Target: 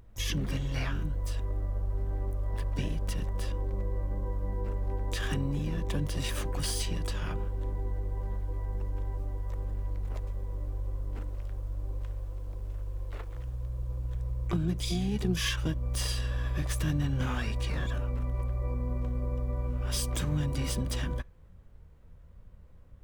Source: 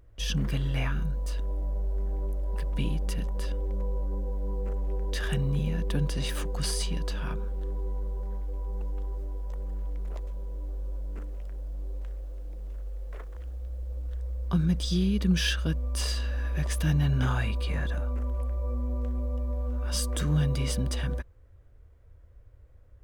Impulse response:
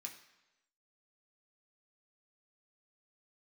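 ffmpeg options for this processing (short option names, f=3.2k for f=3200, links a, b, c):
-filter_complex "[0:a]acompressor=threshold=-31dB:ratio=2,asplit=3[a][b][c];[b]asetrate=29433,aresample=44100,atempo=1.49831,volume=-8dB[d];[c]asetrate=88200,aresample=44100,atempo=0.5,volume=-8dB[e];[a][d][e]amix=inputs=3:normalize=0,asplit=2[f][g];[1:a]atrim=start_sample=2205,atrim=end_sample=3528[h];[g][h]afir=irnorm=-1:irlink=0,volume=-12.5dB[i];[f][i]amix=inputs=2:normalize=0"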